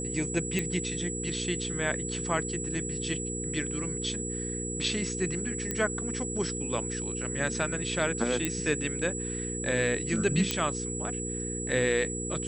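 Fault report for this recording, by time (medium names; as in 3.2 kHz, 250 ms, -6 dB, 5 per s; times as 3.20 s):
hum 60 Hz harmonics 8 -36 dBFS
whine 7.8 kHz -35 dBFS
0.59 s: pop -16 dBFS
5.71 s: pop -16 dBFS
8.45 s: pop -13 dBFS
10.51 s: pop -11 dBFS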